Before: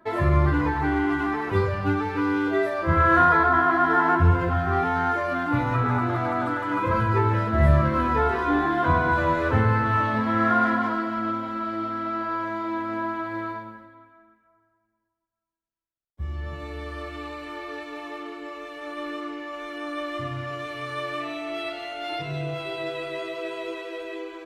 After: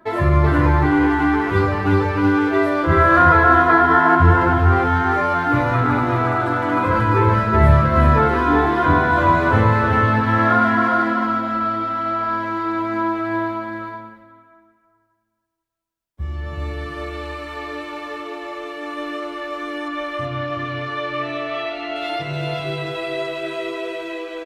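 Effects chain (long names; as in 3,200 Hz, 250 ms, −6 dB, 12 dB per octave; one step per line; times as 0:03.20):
0:19.88–0:21.96: low-pass filter 4,300 Hz 12 dB per octave
single-tap delay 376 ms −3 dB
level +4.5 dB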